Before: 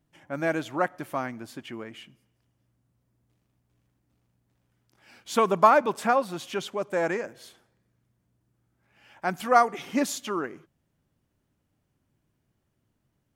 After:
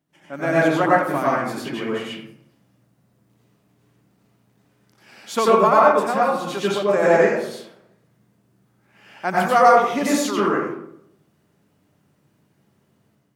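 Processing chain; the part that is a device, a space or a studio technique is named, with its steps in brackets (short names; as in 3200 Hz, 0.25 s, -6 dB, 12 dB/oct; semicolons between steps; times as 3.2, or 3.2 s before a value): far laptop microphone (reverb RT60 0.70 s, pre-delay 84 ms, DRR -6 dB; HPF 150 Hz 12 dB/oct; AGC gain up to 7.5 dB); gain -1 dB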